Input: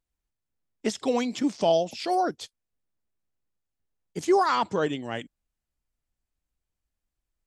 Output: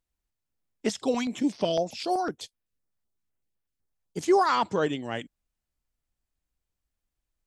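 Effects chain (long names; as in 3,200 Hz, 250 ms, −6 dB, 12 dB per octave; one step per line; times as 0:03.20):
0:00.89–0:04.17: notch on a step sequencer 7.9 Hz 340–7,300 Hz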